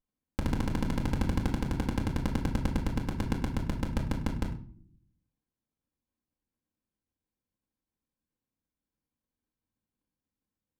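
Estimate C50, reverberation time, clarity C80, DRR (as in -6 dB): 9.0 dB, 0.50 s, 13.5 dB, -2.0 dB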